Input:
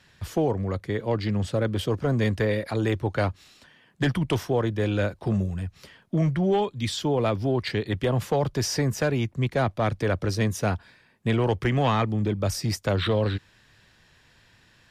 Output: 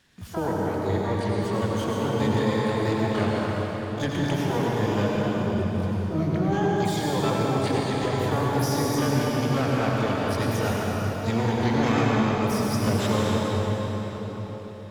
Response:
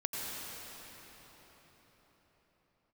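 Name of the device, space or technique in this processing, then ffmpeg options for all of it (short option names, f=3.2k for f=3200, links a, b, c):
shimmer-style reverb: -filter_complex "[0:a]asettb=1/sr,asplit=3[a][b][c];[a]atrim=end=1.524[d];[b]atrim=start=1.52:end=2.69,asetpts=PTS-STARTPTS,afade=t=in:d=0.004:c=qsin,afade=t=out:st=1.166:d=0.004:c=qsin,highpass=86[e];[c]atrim=start=2.686[f];[d][e]acrossfade=d=0.004:c1=hsin:c2=qsin[g];[g][f]acrossfade=d=0.004:c1=qsin:c2=hsin,asplit=2[h][i];[i]asetrate=88200,aresample=44100,atempo=0.5,volume=-5dB[j];[h][j]amix=inputs=2:normalize=0[k];[1:a]atrim=start_sample=2205[l];[k][l]afir=irnorm=-1:irlink=0,volume=-5dB"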